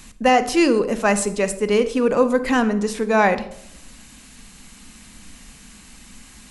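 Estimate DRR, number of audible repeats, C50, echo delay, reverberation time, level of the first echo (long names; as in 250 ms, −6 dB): 11.0 dB, no echo audible, 14.0 dB, no echo audible, 0.75 s, no echo audible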